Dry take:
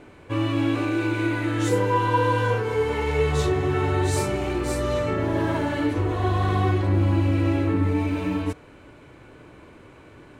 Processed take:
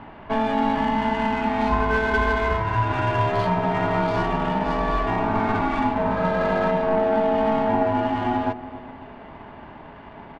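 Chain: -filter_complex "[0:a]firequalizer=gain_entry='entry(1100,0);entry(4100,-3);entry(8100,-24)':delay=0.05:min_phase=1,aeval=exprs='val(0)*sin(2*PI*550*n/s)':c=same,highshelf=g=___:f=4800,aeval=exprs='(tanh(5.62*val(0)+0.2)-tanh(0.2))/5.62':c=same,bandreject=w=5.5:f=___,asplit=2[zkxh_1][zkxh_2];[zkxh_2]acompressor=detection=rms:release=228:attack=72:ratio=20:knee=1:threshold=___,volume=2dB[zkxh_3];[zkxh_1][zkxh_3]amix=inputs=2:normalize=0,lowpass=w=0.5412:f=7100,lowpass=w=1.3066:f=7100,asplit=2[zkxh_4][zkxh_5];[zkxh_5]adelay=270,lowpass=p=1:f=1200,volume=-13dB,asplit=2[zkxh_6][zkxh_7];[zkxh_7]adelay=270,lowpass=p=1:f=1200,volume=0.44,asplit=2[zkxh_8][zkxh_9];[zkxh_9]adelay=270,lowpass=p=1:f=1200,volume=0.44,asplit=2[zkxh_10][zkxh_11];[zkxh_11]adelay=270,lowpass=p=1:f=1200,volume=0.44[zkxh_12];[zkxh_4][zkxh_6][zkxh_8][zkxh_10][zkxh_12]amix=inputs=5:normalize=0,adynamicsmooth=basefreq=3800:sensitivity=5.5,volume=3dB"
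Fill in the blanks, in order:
-4.5, 470, -36dB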